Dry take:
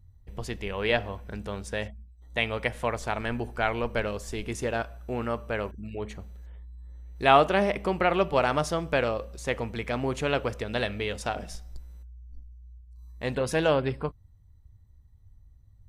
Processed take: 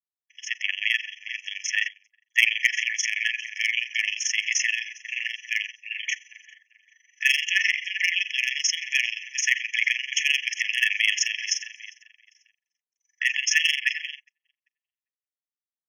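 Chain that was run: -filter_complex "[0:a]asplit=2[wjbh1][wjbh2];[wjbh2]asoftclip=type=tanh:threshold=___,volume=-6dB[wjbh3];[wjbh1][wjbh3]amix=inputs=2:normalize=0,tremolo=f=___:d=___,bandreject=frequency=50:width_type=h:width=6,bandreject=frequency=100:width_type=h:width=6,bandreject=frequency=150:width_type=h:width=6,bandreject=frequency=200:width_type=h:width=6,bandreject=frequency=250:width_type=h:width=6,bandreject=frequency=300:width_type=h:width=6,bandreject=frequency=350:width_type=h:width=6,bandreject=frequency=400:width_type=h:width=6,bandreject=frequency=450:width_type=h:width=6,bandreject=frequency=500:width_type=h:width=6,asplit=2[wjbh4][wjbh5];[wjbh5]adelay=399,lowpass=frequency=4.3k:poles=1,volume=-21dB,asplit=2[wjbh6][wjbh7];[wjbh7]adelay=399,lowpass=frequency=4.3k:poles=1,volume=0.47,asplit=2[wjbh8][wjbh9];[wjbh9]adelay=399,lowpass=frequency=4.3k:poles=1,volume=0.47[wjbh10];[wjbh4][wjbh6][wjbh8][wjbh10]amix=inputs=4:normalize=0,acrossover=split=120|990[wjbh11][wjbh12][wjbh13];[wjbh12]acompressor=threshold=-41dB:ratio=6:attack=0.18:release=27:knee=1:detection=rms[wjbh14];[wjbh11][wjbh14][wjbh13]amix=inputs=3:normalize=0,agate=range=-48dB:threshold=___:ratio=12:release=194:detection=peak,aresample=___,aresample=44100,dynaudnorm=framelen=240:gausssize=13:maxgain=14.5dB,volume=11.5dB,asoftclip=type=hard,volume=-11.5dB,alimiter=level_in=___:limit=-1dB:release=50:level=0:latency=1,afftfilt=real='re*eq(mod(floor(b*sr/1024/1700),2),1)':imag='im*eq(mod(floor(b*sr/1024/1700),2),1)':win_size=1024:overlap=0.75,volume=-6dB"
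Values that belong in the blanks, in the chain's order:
-18dB, 23, 0.889, -42dB, 16000, 21dB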